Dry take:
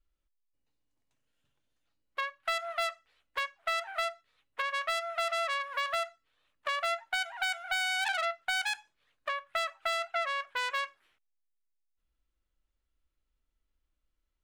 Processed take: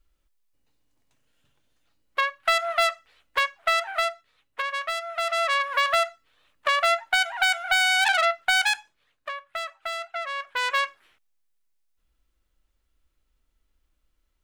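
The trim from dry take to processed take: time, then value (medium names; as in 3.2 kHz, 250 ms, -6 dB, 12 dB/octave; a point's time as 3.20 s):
3.53 s +10 dB
5.05 s +2 dB
5.60 s +10 dB
8.67 s +10 dB
9.32 s 0 dB
10.22 s 0 dB
10.76 s +9 dB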